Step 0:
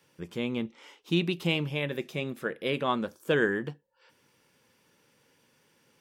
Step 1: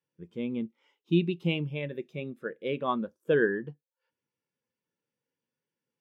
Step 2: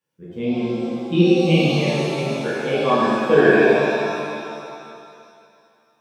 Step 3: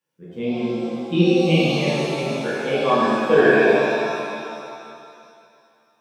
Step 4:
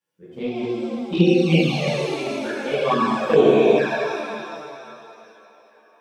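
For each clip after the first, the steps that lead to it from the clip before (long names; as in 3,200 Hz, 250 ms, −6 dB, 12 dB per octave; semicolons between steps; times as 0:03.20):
every bin expanded away from the loudest bin 1.5 to 1
reverb with rising layers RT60 2.4 s, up +7 semitones, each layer −8 dB, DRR −9 dB; level +3 dB
high-pass filter 120 Hz; mains-hum notches 50/100/150/200/250/300/350/400/450 Hz
flanger swept by the level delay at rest 10.2 ms, full sweep at −11 dBFS; delay with a band-pass on its return 478 ms, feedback 62%, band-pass 1,200 Hz, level −21 dB; level +1.5 dB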